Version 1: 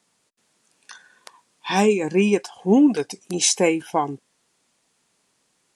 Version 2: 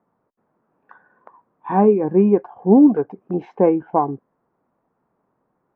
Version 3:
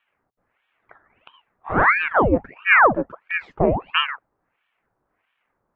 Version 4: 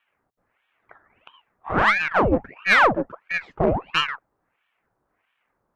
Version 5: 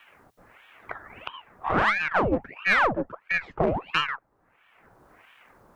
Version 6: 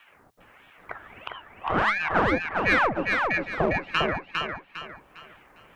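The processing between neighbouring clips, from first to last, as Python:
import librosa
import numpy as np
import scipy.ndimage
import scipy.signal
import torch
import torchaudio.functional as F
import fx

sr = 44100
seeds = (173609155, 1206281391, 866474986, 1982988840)

y1 = scipy.signal.sosfilt(scipy.signal.butter(4, 1200.0, 'lowpass', fs=sr, output='sos'), x)
y1 = F.gain(torch.from_numpy(y1), 4.0).numpy()
y2 = fx.ring_lfo(y1, sr, carrier_hz=1100.0, swing_pct=90, hz=1.5)
y3 = fx.diode_clip(y2, sr, knee_db=-13.0)
y4 = fx.band_squash(y3, sr, depth_pct=70)
y4 = F.gain(torch.from_numpy(y4), -3.5).numpy()
y5 = fx.echo_feedback(y4, sr, ms=404, feedback_pct=35, wet_db=-3.5)
y5 = F.gain(torch.from_numpy(y5), -1.0).numpy()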